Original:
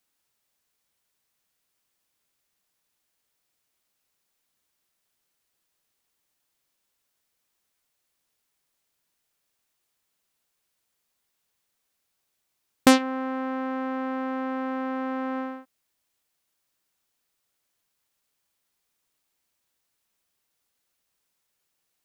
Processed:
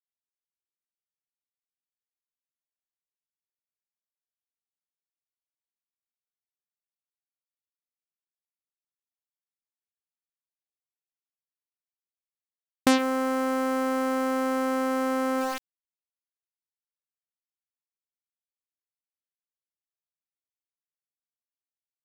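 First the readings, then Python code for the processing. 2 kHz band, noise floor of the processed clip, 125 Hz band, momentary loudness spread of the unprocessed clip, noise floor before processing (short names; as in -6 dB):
0.0 dB, under -85 dBFS, n/a, 12 LU, -78 dBFS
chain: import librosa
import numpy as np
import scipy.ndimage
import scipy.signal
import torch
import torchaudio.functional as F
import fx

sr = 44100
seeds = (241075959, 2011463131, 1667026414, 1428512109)

y = np.where(np.abs(x) >= 10.0 ** (-33.0 / 20.0), x, 0.0)
y = fx.env_flatten(y, sr, amount_pct=50)
y = y * 10.0 ** (-5.5 / 20.0)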